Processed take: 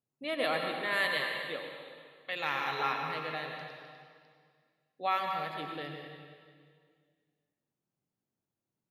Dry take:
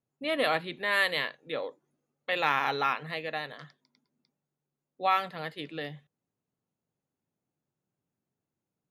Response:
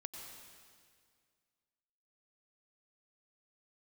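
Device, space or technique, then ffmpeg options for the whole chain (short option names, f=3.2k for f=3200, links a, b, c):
stairwell: -filter_complex "[1:a]atrim=start_sample=2205[a];[0:a][a]afir=irnorm=-1:irlink=0,asettb=1/sr,asplit=3[b][c][d];[b]atrim=end=1.564[e];[c]atrim=start=1.56:end=2.79,asetpts=PTS-STARTPTS,afade=t=in:d=0.004:c=qsin,afade=t=out:st=1.226:d=0.004:c=qsin,equalizer=f=520:t=o:w=2.6:g=-5[f];[d]atrim=start=2.786[g];[e][f]acrossfade=d=0.004:c1=hsin:c2=qsin[h];[h][g]acrossfade=d=0.004:c1=qsin:c2=hsin"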